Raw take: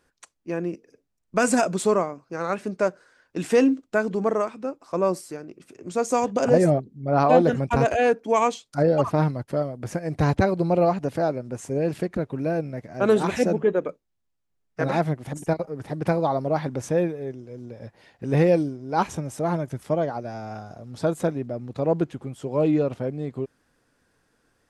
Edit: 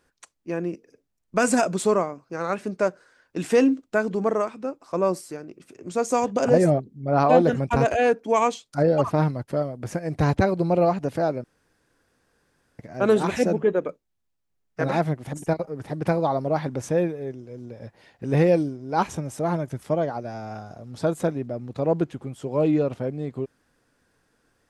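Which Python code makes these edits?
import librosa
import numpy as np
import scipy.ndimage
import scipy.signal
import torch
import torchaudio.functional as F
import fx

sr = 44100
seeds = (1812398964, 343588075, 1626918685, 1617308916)

y = fx.edit(x, sr, fx.room_tone_fill(start_s=11.44, length_s=1.35), tone=tone)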